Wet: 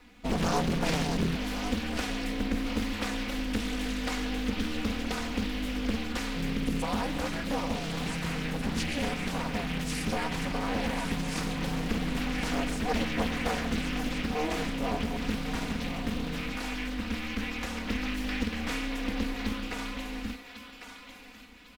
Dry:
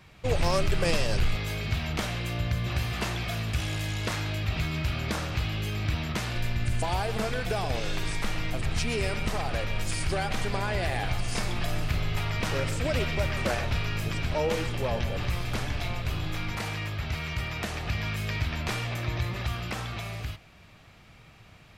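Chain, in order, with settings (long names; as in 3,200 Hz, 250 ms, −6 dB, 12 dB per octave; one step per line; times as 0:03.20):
in parallel at −10.5 dB: log-companded quantiser 4 bits
on the sum: ring modulation 150 Hz
comb filter 4.1 ms, depth 90%
feedback echo with a high-pass in the loop 1,101 ms, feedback 37%, high-pass 780 Hz, level −7.5 dB
highs frequency-modulated by the lows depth 0.88 ms
level −4.5 dB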